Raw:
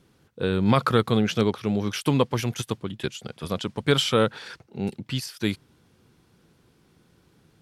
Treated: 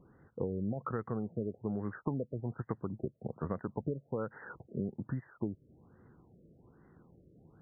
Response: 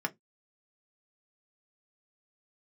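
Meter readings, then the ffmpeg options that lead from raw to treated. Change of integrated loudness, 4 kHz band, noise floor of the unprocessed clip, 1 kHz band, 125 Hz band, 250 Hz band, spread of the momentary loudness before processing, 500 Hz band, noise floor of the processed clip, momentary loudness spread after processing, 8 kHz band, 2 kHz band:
-13.5 dB, under -40 dB, -62 dBFS, -16.0 dB, -11.5 dB, -12.0 dB, 12 LU, -13.5 dB, -68 dBFS, 5 LU, under -40 dB, -19.0 dB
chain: -af "acompressor=threshold=-31dB:ratio=16,afftfilt=real='re*lt(b*sr/1024,640*pow(2100/640,0.5+0.5*sin(2*PI*1.2*pts/sr)))':imag='im*lt(b*sr/1024,640*pow(2100/640,0.5+0.5*sin(2*PI*1.2*pts/sr)))':win_size=1024:overlap=0.75"

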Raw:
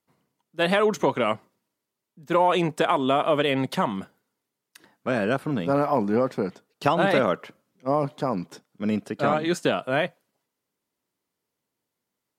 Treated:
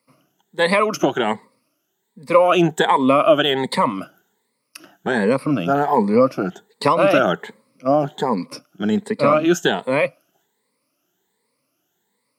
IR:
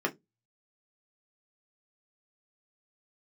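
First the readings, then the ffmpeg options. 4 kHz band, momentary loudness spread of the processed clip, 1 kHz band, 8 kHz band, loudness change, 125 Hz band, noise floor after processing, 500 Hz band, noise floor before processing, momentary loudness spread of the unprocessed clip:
+6.5 dB, 12 LU, +6.0 dB, +8.0 dB, +6.0 dB, +3.5 dB, -72 dBFS, +6.0 dB, -84 dBFS, 11 LU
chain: -filter_complex "[0:a]afftfilt=real='re*pow(10,16/40*sin(2*PI*(0.95*log(max(b,1)*sr/1024/100)/log(2)-(1.3)*(pts-256)/sr)))':imag='im*pow(10,16/40*sin(2*PI*(0.95*log(max(b,1)*sr/1024/100)/log(2)-(1.3)*(pts-256)/sr)))':win_size=1024:overlap=0.75,highpass=140,asplit=2[a][b];[b]acompressor=threshold=-34dB:ratio=6,volume=1dB[c];[a][c]amix=inputs=2:normalize=0,volume=2dB"

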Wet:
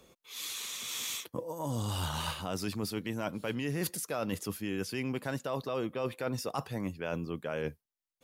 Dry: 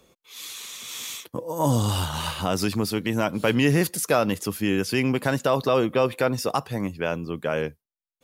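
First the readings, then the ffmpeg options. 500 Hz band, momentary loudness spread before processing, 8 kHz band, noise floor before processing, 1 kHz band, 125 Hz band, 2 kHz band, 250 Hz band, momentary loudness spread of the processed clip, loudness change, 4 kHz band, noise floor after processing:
-12.0 dB, 12 LU, -7.0 dB, under -85 dBFS, -11.5 dB, -10.5 dB, -11.5 dB, -11.0 dB, 4 LU, -11.0 dB, -7.5 dB, under -85 dBFS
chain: -af "areverse,acompressor=threshold=-30dB:ratio=6,areverse,volume=-1.5dB"

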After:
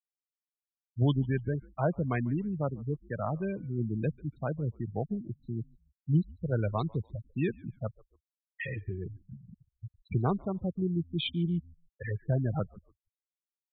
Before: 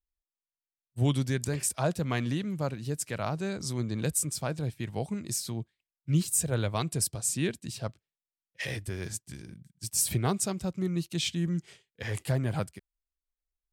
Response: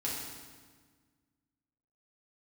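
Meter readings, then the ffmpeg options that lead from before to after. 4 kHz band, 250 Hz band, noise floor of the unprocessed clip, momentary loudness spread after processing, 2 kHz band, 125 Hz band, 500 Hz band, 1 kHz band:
-6.5 dB, 0.0 dB, under -85 dBFS, 11 LU, -4.0 dB, 0.0 dB, -0.5 dB, -1.0 dB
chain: -filter_complex "[0:a]afftfilt=real='re*gte(hypot(re,im),0.0447)':imag='im*gte(hypot(re,im),0.0447)':win_size=1024:overlap=0.75,asplit=2[a][b];[b]asplit=2[c][d];[c]adelay=144,afreqshift=-92,volume=-24dB[e];[d]adelay=288,afreqshift=-184,volume=-33.4dB[f];[e][f]amix=inputs=2:normalize=0[g];[a][g]amix=inputs=2:normalize=0,aresample=8000,aresample=44100"

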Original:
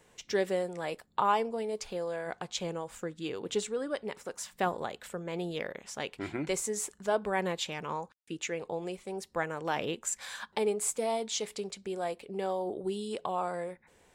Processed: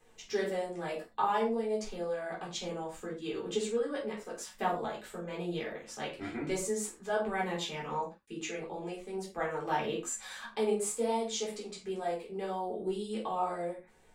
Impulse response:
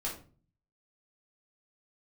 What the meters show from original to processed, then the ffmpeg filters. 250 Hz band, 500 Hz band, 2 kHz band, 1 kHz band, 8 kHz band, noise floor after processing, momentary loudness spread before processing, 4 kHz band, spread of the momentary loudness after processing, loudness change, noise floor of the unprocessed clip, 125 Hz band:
0.0 dB, -1.0 dB, -2.0 dB, -0.5 dB, -3.5 dB, -59 dBFS, 9 LU, -2.5 dB, 9 LU, -1.0 dB, -65 dBFS, -1.5 dB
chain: -filter_complex "[0:a]flanger=delay=3.8:depth=1.7:regen=57:speed=1.9:shape=triangular[a];[1:a]atrim=start_sample=2205,atrim=end_sample=6174[b];[a][b]afir=irnorm=-1:irlink=0"

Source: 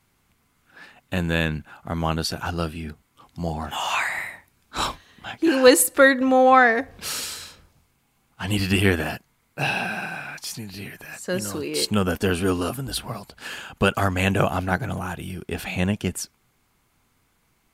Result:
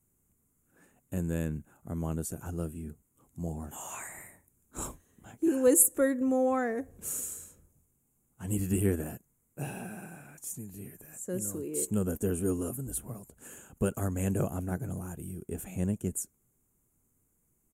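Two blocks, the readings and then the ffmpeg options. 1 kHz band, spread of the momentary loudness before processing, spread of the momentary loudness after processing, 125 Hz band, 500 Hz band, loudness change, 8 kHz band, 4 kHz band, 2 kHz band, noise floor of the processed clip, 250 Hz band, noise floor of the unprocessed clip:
-18.0 dB, 20 LU, 17 LU, -7.0 dB, -10.0 dB, -9.5 dB, -2.5 dB, -27.0 dB, -21.5 dB, -74 dBFS, -7.0 dB, -67 dBFS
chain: -af "firequalizer=gain_entry='entry(400,0);entry(780,-11);entry(4700,-25);entry(6900,5)':delay=0.05:min_phase=1,volume=-7dB"

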